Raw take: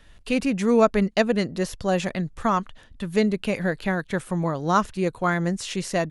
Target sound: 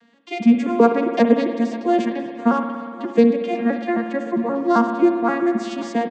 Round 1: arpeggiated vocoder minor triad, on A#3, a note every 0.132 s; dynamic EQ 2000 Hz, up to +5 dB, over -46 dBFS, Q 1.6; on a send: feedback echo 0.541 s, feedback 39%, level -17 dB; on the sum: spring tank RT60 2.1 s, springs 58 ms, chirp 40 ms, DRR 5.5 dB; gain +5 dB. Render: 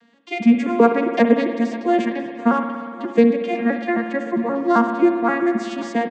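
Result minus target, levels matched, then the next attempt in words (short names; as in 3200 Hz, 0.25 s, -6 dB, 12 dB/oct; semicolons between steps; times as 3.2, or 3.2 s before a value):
2000 Hz band +3.5 dB
arpeggiated vocoder minor triad, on A#3, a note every 0.132 s; dynamic EQ 5100 Hz, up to +5 dB, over -46 dBFS, Q 1.6; on a send: feedback echo 0.541 s, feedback 39%, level -17 dB; on the sum: spring tank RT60 2.1 s, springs 58 ms, chirp 40 ms, DRR 5.5 dB; gain +5 dB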